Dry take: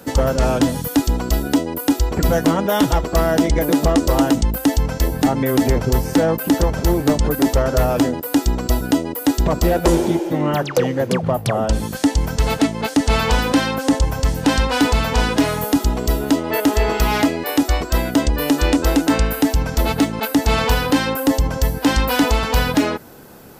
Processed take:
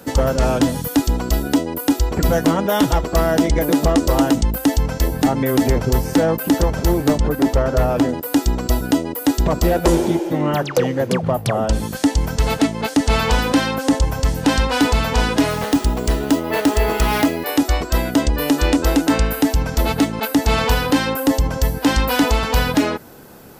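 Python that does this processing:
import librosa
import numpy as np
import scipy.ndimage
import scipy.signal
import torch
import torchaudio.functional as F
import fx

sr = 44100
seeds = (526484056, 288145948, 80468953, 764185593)

y = fx.high_shelf(x, sr, hz=3900.0, db=-8.0, at=(7.18, 8.09))
y = fx.resample_bad(y, sr, factor=3, down='none', up='hold', at=(15.5, 17.45))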